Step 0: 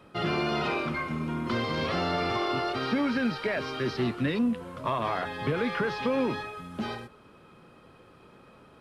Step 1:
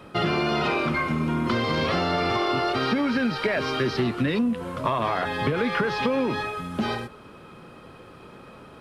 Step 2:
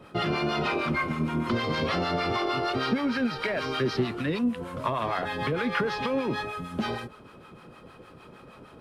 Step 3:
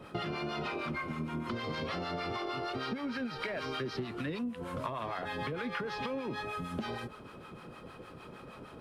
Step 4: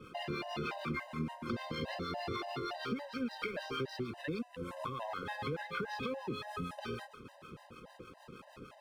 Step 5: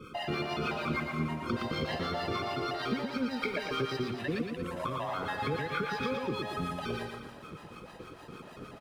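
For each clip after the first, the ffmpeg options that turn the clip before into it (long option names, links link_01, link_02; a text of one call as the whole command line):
ffmpeg -i in.wav -af "acompressor=threshold=-29dB:ratio=6,volume=8.5dB" out.wav
ffmpeg -i in.wav -filter_complex "[0:a]acrossover=split=700[link_01][link_02];[link_01]aeval=exprs='val(0)*(1-0.7/2+0.7/2*cos(2*PI*6.5*n/s))':channel_layout=same[link_03];[link_02]aeval=exprs='val(0)*(1-0.7/2-0.7/2*cos(2*PI*6.5*n/s))':channel_layout=same[link_04];[link_03][link_04]amix=inputs=2:normalize=0" out.wav
ffmpeg -i in.wav -af "acompressor=threshold=-34dB:ratio=6" out.wav
ffmpeg -i in.wav -af "aeval=exprs='sgn(val(0))*max(abs(val(0))-0.00112,0)':channel_layout=same,afftfilt=real='re*gt(sin(2*PI*3.5*pts/sr)*(1-2*mod(floor(b*sr/1024/520),2)),0)':imag='im*gt(sin(2*PI*3.5*pts/sr)*(1-2*mod(floor(b*sr/1024/520),2)),0)':win_size=1024:overlap=0.75,volume=1dB" out.wav
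ffmpeg -i in.wav -af "aecho=1:1:116|232|348|464|580|696:0.562|0.287|0.146|0.0746|0.038|0.0194,volume=4.5dB" out.wav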